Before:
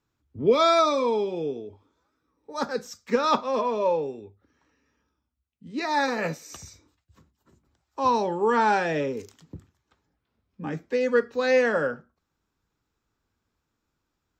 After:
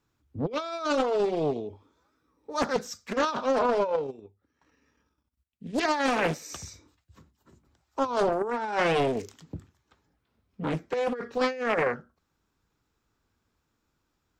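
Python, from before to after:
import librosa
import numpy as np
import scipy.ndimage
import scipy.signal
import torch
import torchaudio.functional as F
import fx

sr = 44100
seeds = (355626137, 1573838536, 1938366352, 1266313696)

y = fx.transient(x, sr, attack_db=3, sustain_db=-11, at=(3.88, 5.97))
y = fx.over_compress(y, sr, threshold_db=-25.0, ratio=-0.5)
y = fx.doppler_dist(y, sr, depth_ms=0.83)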